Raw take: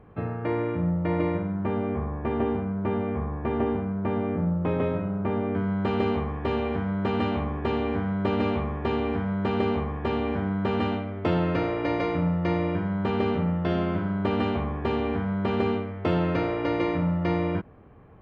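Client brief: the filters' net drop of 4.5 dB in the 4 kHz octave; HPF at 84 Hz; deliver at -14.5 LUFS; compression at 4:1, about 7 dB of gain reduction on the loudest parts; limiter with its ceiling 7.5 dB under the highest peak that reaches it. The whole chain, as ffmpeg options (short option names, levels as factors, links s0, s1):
-af "highpass=84,equalizer=f=4000:t=o:g=-7,acompressor=threshold=0.0355:ratio=4,volume=9.44,alimiter=limit=0.531:level=0:latency=1"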